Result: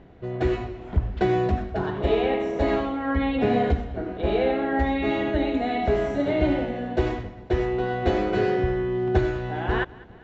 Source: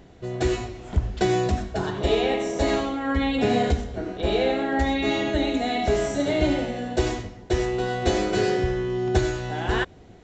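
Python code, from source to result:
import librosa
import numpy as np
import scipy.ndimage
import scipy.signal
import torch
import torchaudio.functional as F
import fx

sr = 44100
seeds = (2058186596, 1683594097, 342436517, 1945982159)

y = scipy.signal.sosfilt(scipy.signal.butter(2, 2400.0, 'lowpass', fs=sr, output='sos'), x)
y = fx.echo_feedback(y, sr, ms=200, feedback_pct=50, wet_db=-21.5)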